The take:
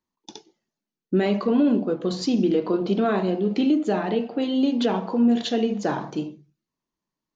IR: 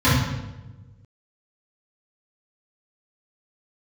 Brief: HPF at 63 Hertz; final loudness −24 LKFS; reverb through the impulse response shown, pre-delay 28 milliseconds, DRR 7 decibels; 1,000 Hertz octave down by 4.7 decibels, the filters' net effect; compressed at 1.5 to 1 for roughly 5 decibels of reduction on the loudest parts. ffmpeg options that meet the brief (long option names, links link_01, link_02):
-filter_complex "[0:a]highpass=63,equalizer=frequency=1000:width_type=o:gain=-7,acompressor=threshold=-30dB:ratio=1.5,asplit=2[link_01][link_02];[1:a]atrim=start_sample=2205,adelay=28[link_03];[link_02][link_03]afir=irnorm=-1:irlink=0,volume=-29dB[link_04];[link_01][link_04]amix=inputs=2:normalize=0"